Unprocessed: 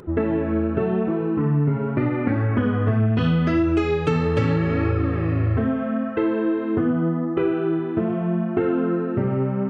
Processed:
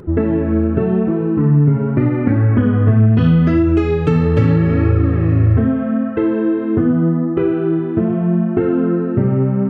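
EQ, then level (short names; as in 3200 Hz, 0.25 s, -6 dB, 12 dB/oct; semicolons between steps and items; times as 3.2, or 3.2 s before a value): low shelf 450 Hz +11 dB; bell 1700 Hz +2.5 dB; -1.5 dB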